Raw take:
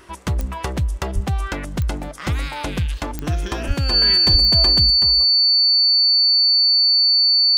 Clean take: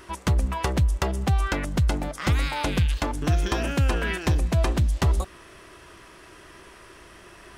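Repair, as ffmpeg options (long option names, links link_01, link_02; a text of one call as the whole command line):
ffmpeg -i in.wav -filter_complex "[0:a]adeclick=threshold=4,bandreject=frequency=4500:width=30,asplit=3[link_01][link_02][link_03];[link_01]afade=type=out:start_time=1.14:duration=0.02[link_04];[link_02]highpass=frequency=140:width=0.5412,highpass=frequency=140:width=1.3066,afade=type=in:start_time=1.14:duration=0.02,afade=type=out:start_time=1.26:duration=0.02[link_05];[link_03]afade=type=in:start_time=1.26:duration=0.02[link_06];[link_04][link_05][link_06]amix=inputs=3:normalize=0,asplit=3[link_07][link_08][link_09];[link_07]afade=type=out:start_time=3.67:duration=0.02[link_10];[link_08]highpass=frequency=140:width=0.5412,highpass=frequency=140:width=1.3066,afade=type=in:start_time=3.67:duration=0.02,afade=type=out:start_time=3.79:duration=0.02[link_11];[link_09]afade=type=in:start_time=3.79:duration=0.02[link_12];[link_10][link_11][link_12]amix=inputs=3:normalize=0,asplit=3[link_13][link_14][link_15];[link_13]afade=type=out:start_time=4.31:duration=0.02[link_16];[link_14]highpass=frequency=140:width=0.5412,highpass=frequency=140:width=1.3066,afade=type=in:start_time=4.31:duration=0.02,afade=type=out:start_time=4.43:duration=0.02[link_17];[link_15]afade=type=in:start_time=4.43:duration=0.02[link_18];[link_16][link_17][link_18]amix=inputs=3:normalize=0,asetnsamples=nb_out_samples=441:pad=0,asendcmd='4.9 volume volume 10.5dB',volume=0dB" out.wav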